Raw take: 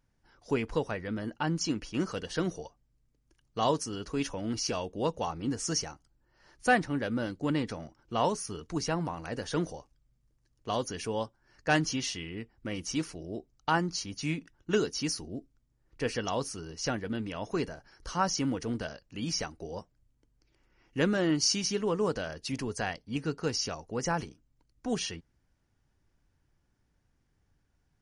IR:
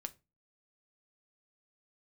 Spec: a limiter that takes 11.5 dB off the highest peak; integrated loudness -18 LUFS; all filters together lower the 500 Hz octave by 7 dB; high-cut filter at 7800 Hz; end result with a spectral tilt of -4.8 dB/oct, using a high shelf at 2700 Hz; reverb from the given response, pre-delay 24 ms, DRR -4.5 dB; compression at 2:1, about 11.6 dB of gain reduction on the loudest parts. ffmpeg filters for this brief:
-filter_complex "[0:a]lowpass=7.8k,equalizer=f=500:t=o:g=-8.5,highshelf=f=2.7k:g=-8,acompressor=threshold=-46dB:ratio=2,alimiter=level_in=14.5dB:limit=-24dB:level=0:latency=1,volume=-14.5dB,asplit=2[a][b];[1:a]atrim=start_sample=2205,adelay=24[c];[b][c]afir=irnorm=-1:irlink=0,volume=7.5dB[d];[a][d]amix=inputs=2:normalize=0,volume=24.5dB"

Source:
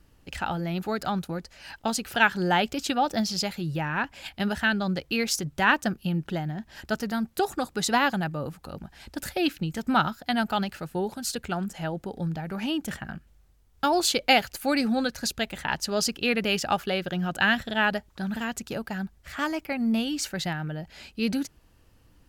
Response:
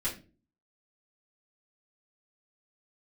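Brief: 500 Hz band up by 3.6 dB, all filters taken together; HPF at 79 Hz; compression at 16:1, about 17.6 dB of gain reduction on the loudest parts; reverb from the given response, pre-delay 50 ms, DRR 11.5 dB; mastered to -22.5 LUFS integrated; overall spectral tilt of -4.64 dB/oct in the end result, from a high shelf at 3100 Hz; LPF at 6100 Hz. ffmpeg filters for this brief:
-filter_complex "[0:a]highpass=79,lowpass=6.1k,equalizer=f=500:t=o:g=5,highshelf=f=3.1k:g=-8,acompressor=threshold=-32dB:ratio=16,asplit=2[a][b];[1:a]atrim=start_sample=2205,adelay=50[c];[b][c]afir=irnorm=-1:irlink=0,volume=-16dB[d];[a][d]amix=inputs=2:normalize=0,volume=14.5dB"

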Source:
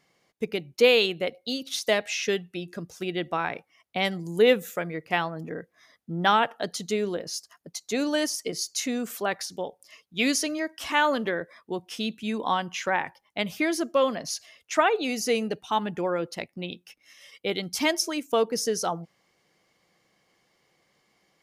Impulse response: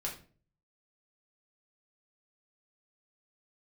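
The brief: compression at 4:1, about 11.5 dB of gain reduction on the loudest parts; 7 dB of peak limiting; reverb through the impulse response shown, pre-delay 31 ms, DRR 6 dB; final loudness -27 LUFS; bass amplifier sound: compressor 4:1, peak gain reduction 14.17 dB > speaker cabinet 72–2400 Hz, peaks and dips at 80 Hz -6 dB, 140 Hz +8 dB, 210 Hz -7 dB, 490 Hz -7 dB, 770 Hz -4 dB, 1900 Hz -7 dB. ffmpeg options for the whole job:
-filter_complex "[0:a]acompressor=threshold=-28dB:ratio=4,alimiter=limit=-22.5dB:level=0:latency=1,asplit=2[a][b];[1:a]atrim=start_sample=2205,adelay=31[c];[b][c]afir=irnorm=-1:irlink=0,volume=-7.5dB[d];[a][d]amix=inputs=2:normalize=0,acompressor=threshold=-41dB:ratio=4,highpass=f=72:w=0.5412,highpass=f=72:w=1.3066,equalizer=f=80:t=q:w=4:g=-6,equalizer=f=140:t=q:w=4:g=8,equalizer=f=210:t=q:w=4:g=-7,equalizer=f=490:t=q:w=4:g=-7,equalizer=f=770:t=q:w=4:g=-4,equalizer=f=1.9k:t=q:w=4:g=-7,lowpass=f=2.4k:w=0.5412,lowpass=f=2.4k:w=1.3066,volume=20dB"

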